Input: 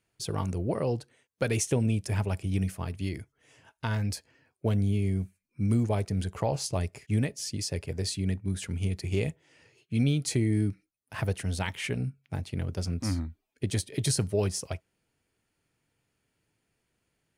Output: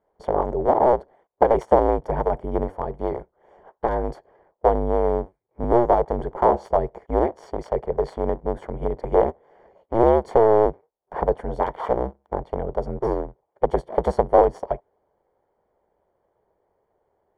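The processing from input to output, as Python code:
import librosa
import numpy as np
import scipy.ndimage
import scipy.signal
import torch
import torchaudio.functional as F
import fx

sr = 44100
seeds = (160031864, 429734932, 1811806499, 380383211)

y = fx.cycle_switch(x, sr, every=2, mode='inverted')
y = scipy.signal.savgol_filter(y, 41, 4, mode='constant')
y = fx.band_shelf(y, sr, hz=610.0, db=15.0, octaves=1.7)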